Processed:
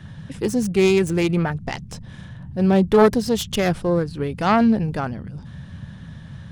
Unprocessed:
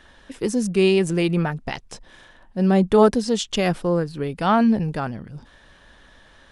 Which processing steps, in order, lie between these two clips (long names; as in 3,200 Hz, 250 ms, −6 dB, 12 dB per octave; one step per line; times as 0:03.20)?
phase distortion by the signal itself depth 0.19 ms
noise in a band 67–190 Hz −38 dBFS
level +1 dB